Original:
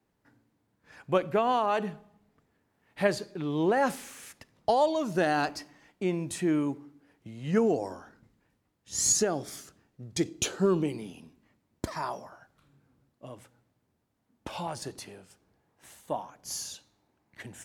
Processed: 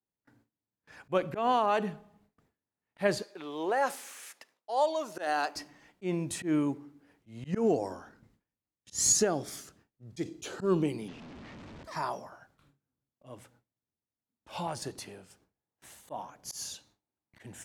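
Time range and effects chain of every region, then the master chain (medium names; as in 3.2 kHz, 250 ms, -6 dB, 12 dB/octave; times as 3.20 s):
3.22–5.56 s: dynamic bell 2.5 kHz, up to -3 dB, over -43 dBFS, Q 0.71 + high-pass 530 Hz
11.08–11.85 s: one-bit delta coder 64 kbps, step -40.5 dBFS + distance through air 170 m
whole clip: gate with hold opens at -54 dBFS; slow attack 114 ms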